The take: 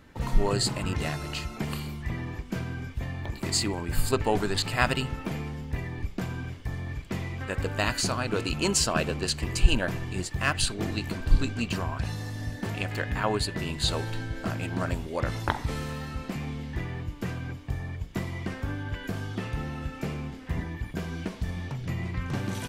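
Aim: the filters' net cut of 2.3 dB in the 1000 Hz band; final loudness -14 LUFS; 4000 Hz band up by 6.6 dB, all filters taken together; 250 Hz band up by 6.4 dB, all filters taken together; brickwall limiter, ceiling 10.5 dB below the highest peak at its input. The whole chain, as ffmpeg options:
-af "equalizer=f=250:t=o:g=8.5,equalizer=f=1k:t=o:g=-4,equalizer=f=4k:t=o:g=8,volume=14.5dB,alimiter=limit=0dB:level=0:latency=1"

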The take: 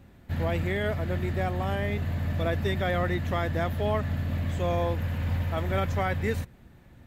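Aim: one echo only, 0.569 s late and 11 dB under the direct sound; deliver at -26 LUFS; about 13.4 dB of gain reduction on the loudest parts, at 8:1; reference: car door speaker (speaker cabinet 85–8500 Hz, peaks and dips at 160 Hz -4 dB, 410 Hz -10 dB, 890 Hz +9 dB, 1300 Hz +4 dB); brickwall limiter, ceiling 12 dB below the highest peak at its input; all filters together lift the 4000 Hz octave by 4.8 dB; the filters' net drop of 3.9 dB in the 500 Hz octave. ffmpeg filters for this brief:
-af "equalizer=f=500:t=o:g=-3.5,equalizer=f=4k:t=o:g=6,acompressor=threshold=-38dB:ratio=8,alimiter=level_in=16dB:limit=-24dB:level=0:latency=1,volume=-16dB,highpass=85,equalizer=f=160:t=q:w=4:g=-4,equalizer=f=410:t=q:w=4:g=-10,equalizer=f=890:t=q:w=4:g=9,equalizer=f=1.3k:t=q:w=4:g=4,lowpass=f=8.5k:w=0.5412,lowpass=f=8.5k:w=1.3066,aecho=1:1:569:0.282,volume=23.5dB"

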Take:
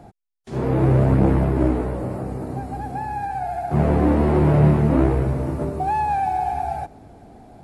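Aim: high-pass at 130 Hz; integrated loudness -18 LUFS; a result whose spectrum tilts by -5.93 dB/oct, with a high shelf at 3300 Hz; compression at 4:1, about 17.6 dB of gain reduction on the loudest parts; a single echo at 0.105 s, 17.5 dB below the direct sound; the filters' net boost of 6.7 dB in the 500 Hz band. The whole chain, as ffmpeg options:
-af "highpass=130,equalizer=f=500:t=o:g=9,highshelf=f=3.3k:g=-7.5,acompressor=threshold=-33dB:ratio=4,aecho=1:1:105:0.133,volume=16dB"

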